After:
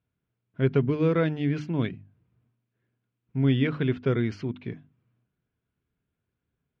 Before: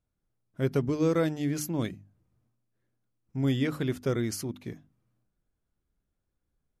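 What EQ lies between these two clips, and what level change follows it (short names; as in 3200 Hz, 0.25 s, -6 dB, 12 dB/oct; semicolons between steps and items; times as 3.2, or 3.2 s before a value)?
speaker cabinet 110–3000 Hz, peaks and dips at 200 Hz -5 dB, 320 Hz -7 dB, 560 Hz -9 dB, 810 Hz -8 dB, 1200 Hz -6 dB, 1900 Hz -4 dB; +7.5 dB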